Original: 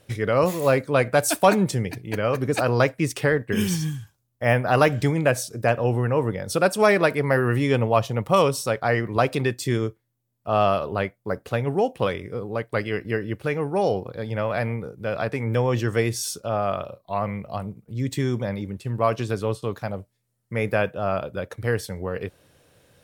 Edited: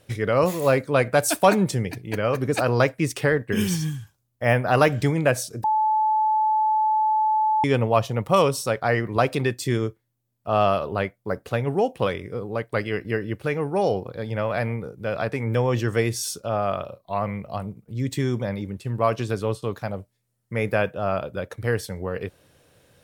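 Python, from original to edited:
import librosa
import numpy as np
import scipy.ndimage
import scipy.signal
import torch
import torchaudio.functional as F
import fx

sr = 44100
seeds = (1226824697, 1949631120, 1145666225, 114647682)

y = fx.edit(x, sr, fx.bleep(start_s=5.64, length_s=2.0, hz=866.0, db=-17.5), tone=tone)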